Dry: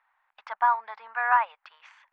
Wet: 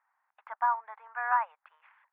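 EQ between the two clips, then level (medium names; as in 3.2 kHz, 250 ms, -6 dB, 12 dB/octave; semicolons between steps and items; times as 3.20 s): band-pass 600–2300 Hz; distance through air 470 m; -2.0 dB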